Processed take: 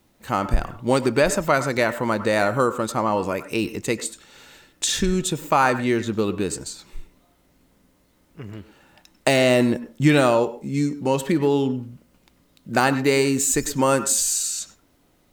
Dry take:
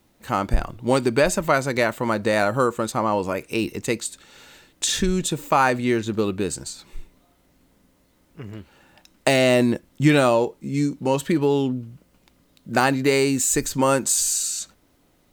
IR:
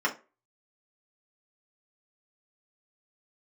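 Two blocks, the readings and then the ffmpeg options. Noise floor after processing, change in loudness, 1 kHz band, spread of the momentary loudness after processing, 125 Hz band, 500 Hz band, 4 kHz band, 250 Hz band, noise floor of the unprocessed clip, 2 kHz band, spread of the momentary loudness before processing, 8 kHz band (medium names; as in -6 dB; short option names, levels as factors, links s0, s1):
-62 dBFS, 0.0 dB, 0.0 dB, 9 LU, 0.0 dB, 0.0 dB, 0.0 dB, 0.0 dB, -62 dBFS, 0.0 dB, 9 LU, 0.0 dB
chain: -filter_complex "[0:a]asplit=2[s0][s1];[1:a]atrim=start_sample=2205,adelay=94[s2];[s1][s2]afir=irnorm=-1:irlink=0,volume=0.0668[s3];[s0][s3]amix=inputs=2:normalize=0"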